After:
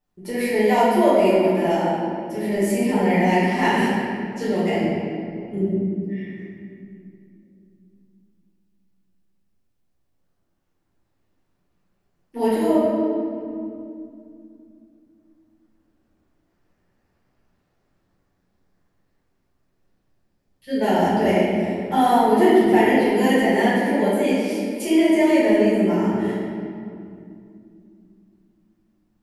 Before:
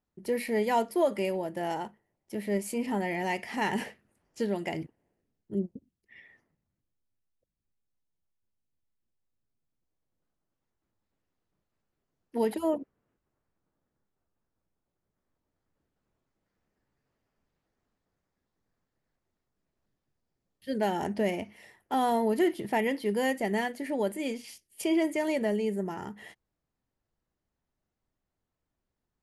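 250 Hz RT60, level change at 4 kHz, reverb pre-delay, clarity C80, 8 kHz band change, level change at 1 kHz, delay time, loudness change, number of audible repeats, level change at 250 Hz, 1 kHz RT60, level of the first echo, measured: 4.0 s, +10.0 dB, 5 ms, -0.5 dB, +7.0 dB, +11.5 dB, no echo, +10.5 dB, no echo, +13.0 dB, 2.3 s, no echo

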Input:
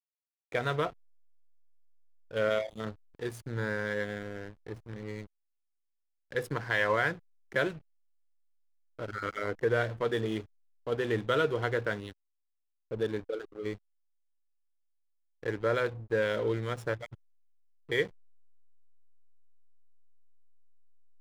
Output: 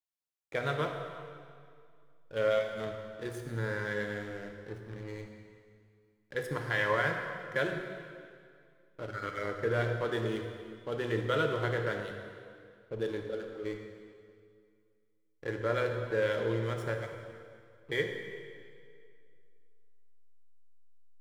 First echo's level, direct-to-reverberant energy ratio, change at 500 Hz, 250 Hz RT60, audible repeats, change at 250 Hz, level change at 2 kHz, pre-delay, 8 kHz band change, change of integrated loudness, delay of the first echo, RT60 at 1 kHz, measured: no echo, 3.0 dB, -1.5 dB, 2.4 s, no echo, -1.5 dB, -1.5 dB, 3 ms, no reading, -2.0 dB, no echo, 2.2 s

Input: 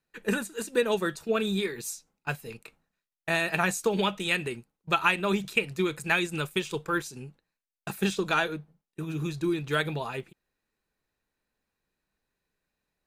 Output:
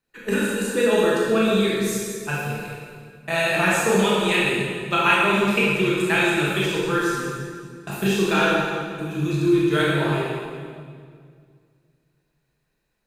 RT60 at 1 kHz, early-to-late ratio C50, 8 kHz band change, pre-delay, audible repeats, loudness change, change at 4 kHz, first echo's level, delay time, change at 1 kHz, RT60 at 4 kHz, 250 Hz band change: 1.9 s, -2.5 dB, +7.0 dB, 19 ms, no echo, +7.5 dB, +7.0 dB, no echo, no echo, +7.5 dB, 1.7 s, +9.5 dB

